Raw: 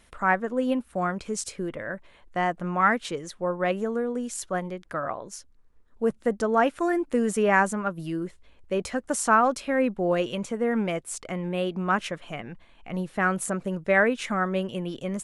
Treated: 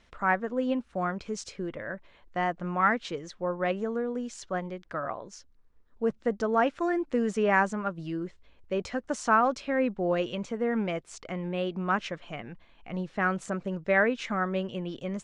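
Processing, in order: low-pass 6.3 kHz 24 dB/octave; trim -3 dB

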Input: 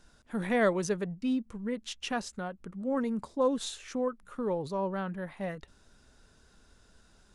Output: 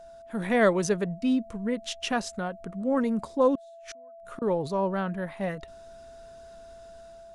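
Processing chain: level rider gain up to 5 dB; 3.55–4.42 s: inverted gate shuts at -28 dBFS, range -35 dB; whistle 670 Hz -45 dBFS

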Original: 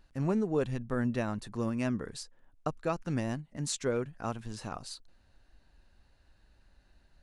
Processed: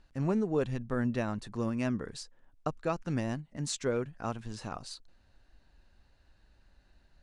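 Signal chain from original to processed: low-pass 8.8 kHz 12 dB/octave

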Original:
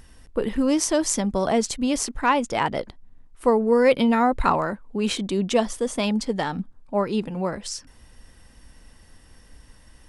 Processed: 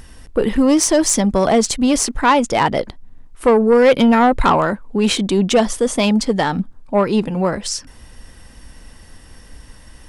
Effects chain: saturation -14.5 dBFS, distortion -16 dB; trim +9 dB

